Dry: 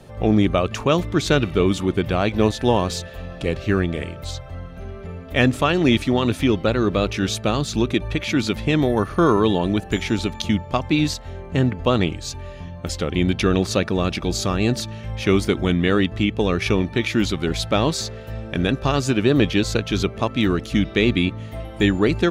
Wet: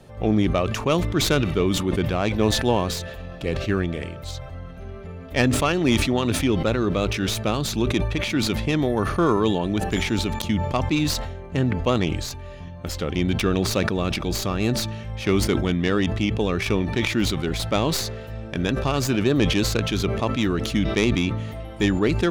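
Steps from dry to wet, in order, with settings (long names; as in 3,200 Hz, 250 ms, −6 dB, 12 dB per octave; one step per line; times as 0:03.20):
stylus tracing distortion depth 0.09 ms
level that may fall only so fast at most 44 dB per second
level −3.5 dB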